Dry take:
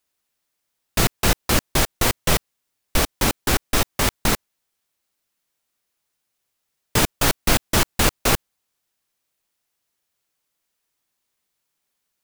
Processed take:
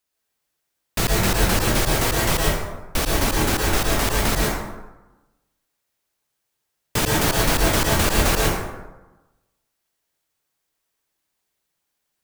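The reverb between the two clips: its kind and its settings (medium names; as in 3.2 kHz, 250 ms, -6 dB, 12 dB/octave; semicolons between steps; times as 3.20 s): plate-style reverb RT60 1.1 s, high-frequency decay 0.5×, pre-delay 100 ms, DRR -3 dB; trim -3.5 dB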